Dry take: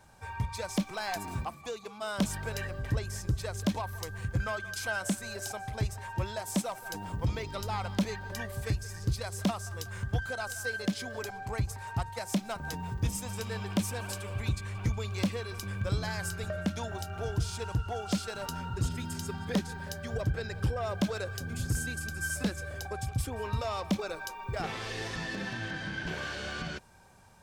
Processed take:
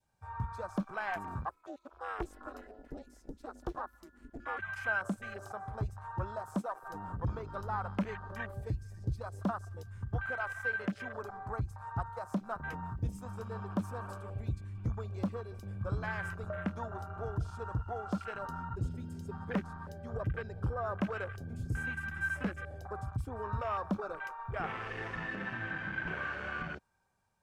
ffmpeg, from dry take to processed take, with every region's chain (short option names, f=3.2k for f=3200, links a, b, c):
-filter_complex "[0:a]asettb=1/sr,asplit=3[a][b][c];[a]atrim=end=1.494[d];[b]atrim=start=1.49:end=4.59,asetpts=PTS-STARTPTS,afade=t=in:d=0.004:c=qsin,afade=t=out:st=3.096:d=0.004:c=qsin,highpass=190,bandreject=f=2.3k:w=20,aeval=exprs='val(0)*sin(2*PI*150*n/s)':c=same[e];[c]atrim=start=4.586[f];[d][e]acrossfade=d=0.004:c1=hsin:c2=qsin[g];[g][f]acrossfade=d=0.004:c1=qsin:c2=hsin,afwtdn=0.0112,adynamicequalizer=threshold=0.00224:dfrequency=1300:dqfactor=1.4:tfrequency=1300:tqfactor=1.4:attack=5:release=100:ratio=0.375:range=4:mode=boostabove:tftype=bell,volume=-4.5dB"